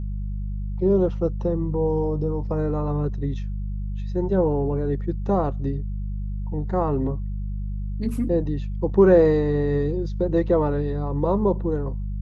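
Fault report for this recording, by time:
hum 50 Hz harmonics 4 -28 dBFS

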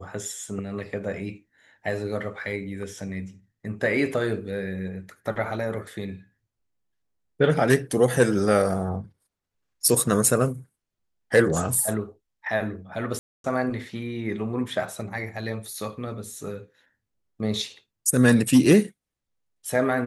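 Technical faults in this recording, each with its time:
13.19–13.44 s: dropout 252 ms

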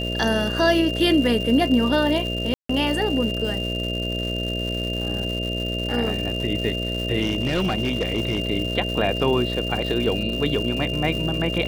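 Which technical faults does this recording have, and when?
buzz 60 Hz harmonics 11 -28 dBFS
crackle 270 per s -29 dBFS
whine 2.8 kHz -28 dBFS
2.54–2.69 s: dropout 154 ms
7.21–8.40 s: clipped -17.5 dBFS

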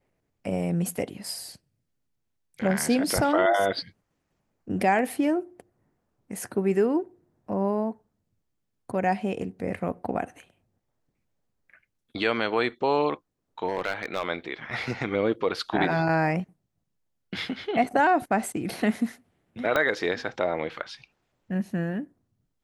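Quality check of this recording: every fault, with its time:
13.67–14.28 s: clipped -21.5 dBFS
19.76 s: pop -11 dBFS

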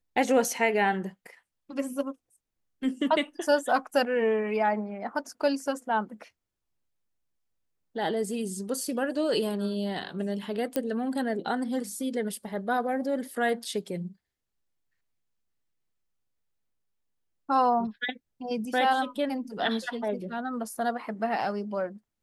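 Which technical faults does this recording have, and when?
10.76 s: pop -13 dBFS

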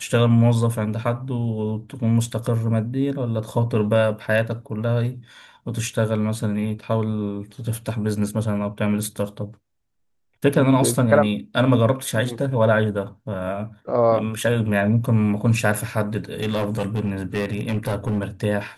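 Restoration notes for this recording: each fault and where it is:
16.40–18.24 s: clipped -18.5 dBFS

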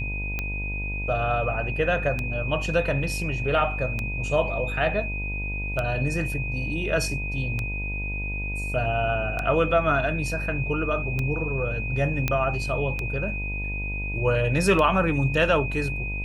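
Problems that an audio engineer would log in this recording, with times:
buzz 50 Hz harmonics 20 -31 dBFS
tick 33 1/3 rpm -14 dBFS
whine 2.5 kHz -31 dBFS
12.28 s: pop -9 dBFS

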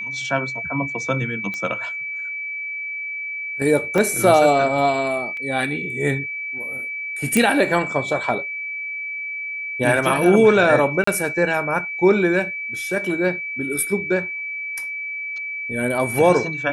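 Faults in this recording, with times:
whine 2.3 kHz -26 dBFS
1.54 s: pop -16 dBFS
3.98 s: dropout 2.4 ms
5.37 s: dropout 2.5 ms
7.37 s: pop -4 dBFS
11.04–11.07 s: dropout 34 ms

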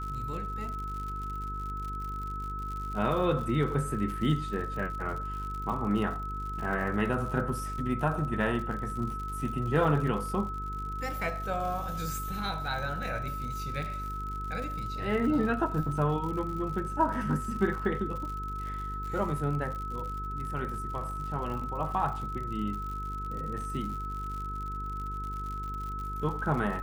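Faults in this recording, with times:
buzz 50 Hz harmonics 9 -38 dBFS
crackle 84 per s -37 dBFS
whine 1.3 kHz -36 dBFS

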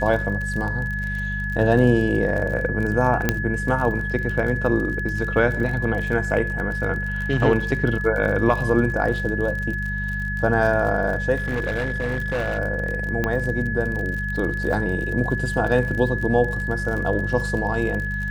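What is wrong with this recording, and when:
crackle 38 per s -28 dBFS
hum 50 Hz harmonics 4 -28 dBFS
whine 1.7 kHz -27 dBFS
3.29 s: pop -4 dBFS
11.35–12.59 s: clipped -20 dBFS
13.24 s: pop -10 dBFS

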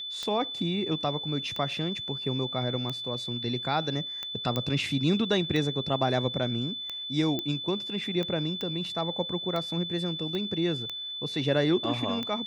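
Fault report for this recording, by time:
tick 45 rpm -20 dBFS
whine 3.5 kHz -34 dBFS
4.56 s: pop -15 dBFS
7.39 s: pop -17 dBFS
8.61 s: pop -20 dBFS
10.35 s: pop -22 dBFS

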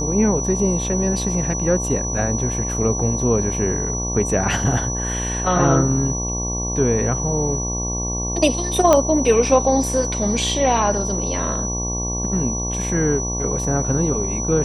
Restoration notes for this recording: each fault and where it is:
buzz 60 Hz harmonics 19 -26 dBFS
whine 5.9 kHz -25 dBFS
8.93 s: pop -2 dBFS

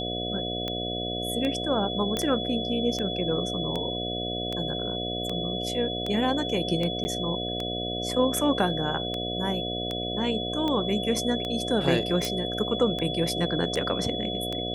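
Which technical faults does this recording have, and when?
buzz 60 Hz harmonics 12 -33 dBFS
tick 78 rpm -17 dBFS
whine 3.4 kHz -32 dBFS
2.17 s: pop -13 dBFS
7.04–7.05 s: dropout 10 ms
12.25 s: pop

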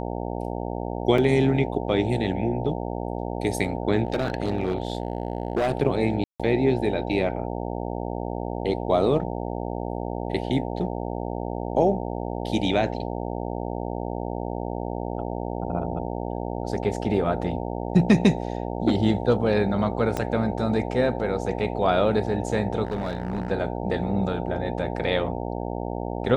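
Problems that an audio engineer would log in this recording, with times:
buzz 60 Hz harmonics 15 -30 dBFS
1.18 s: dropout 3.4 ms
4.05–5.73 s: clipped -19 dBFS
6.24–6.40 s: dropout 156 ms
20.17 s: pop -13 dBFS
22.85–23.52 s: clipped -23 dBFS

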